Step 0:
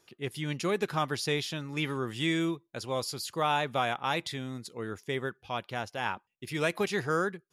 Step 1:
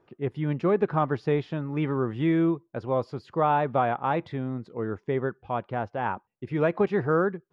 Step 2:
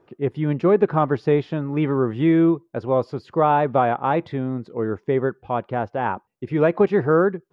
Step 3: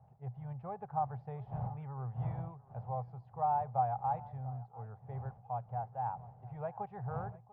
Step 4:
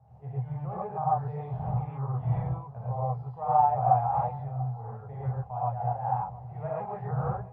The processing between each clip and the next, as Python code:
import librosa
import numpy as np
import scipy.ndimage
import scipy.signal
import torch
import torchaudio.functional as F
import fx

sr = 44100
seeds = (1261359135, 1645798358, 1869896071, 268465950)

y1 = scipy.signal.sosfilt(scipy.signal.butter(2, 1100.0, 'lowpass', fs=sr, output='sos'), x)
y1 = y1 * librosa.db_to_amplitude(7.0)
y2 = fx.peak_eq(y1, sr, hz=390.0, db=3.5, octaves=2.0)
y2 = y2 * librosa.db_to_amplitude(3.5)
y3 = fx.dmg_wind(y2, sr, seeds[0], corner_hz=290.0, level_db=-29.0)
y3 = fx.double_bandpass(y3, sr, hz=310.0, octaves=2.7)
y3 = y3 + 10.0 ** (-20.0 / 20.0) * np.pad(y3, (int(693 * sr / 1000.0), 0))[:len(y3)]
y3 = y3 * librosa.db_to_amplitude(-7.5)
y4 = fx.air_absorb(y3, sr, metres=61.0)
y4 = fx.rev_gated(y4, sr, seeds[1], gate_ms=150, shape='rising', drr_db=-7.5)